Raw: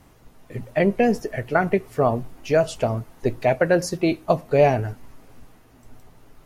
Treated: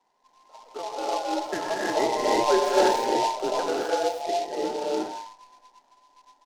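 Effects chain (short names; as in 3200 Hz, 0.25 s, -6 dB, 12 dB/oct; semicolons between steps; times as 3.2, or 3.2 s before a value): band inversion scrambler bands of 1000 Hz; Doppler pass-by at 2.51, 6 m/s, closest 2.6 m; three-band isolator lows -12 dB, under 210 Hz, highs -16 dB, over 2400 Hz; on a send: echo 99 ms -18 dB; on the sum: transient shaper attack 0 dB, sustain +5 dB; non-linear reverb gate 0.37 s rising, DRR -5 dB; noise-modulated delay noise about 3900 Hz, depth 0.045 ms; gain -3.5 dB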